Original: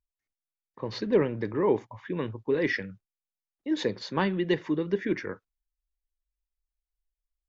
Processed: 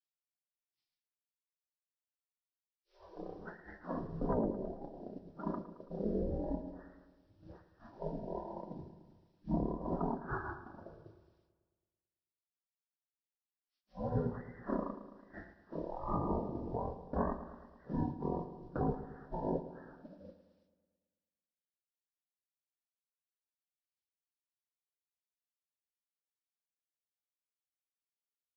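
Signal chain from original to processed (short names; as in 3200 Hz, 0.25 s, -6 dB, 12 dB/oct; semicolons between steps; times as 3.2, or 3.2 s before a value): HPF 77 Hz 24 dB/oct; spectral gate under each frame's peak -30 dB weak; bell 3800 Hz -9 dB 2.8 oct; limiter -44 dBFS, peak gain reduction 8.5 dB; transient shaper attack +5 dB, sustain -8 dB; wide varispeed 0.262×; on a send: darkening echo 0.11 s, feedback 61%, low-pass 3900 Hz, level -13 dB; on the sum: gain +17.5 dB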